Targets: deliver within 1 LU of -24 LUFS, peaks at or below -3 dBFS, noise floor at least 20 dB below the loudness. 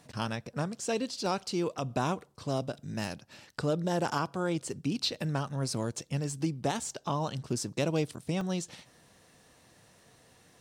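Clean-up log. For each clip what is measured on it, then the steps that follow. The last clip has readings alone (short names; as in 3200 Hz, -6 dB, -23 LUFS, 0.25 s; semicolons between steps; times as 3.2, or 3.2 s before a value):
dropouts 2; longest dropout 1.4 ms; loudness -33.0 LUFS; peak -18.0 dBFS; loudness target -24.0 LUFS
-> interpolate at 1.26/8.41, 1.4 ms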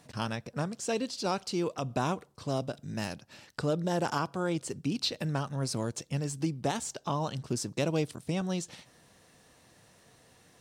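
dropouts 0; loudness -33.0 LUFS; peak -18.0 dBFS; loudness target -24.0 LUFS
-> gain +9 dB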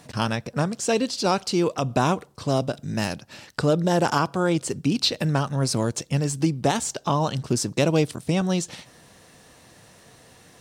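loudness -24.0 LUFS; peak -9.0 dBFS; noise floor -53 dBFS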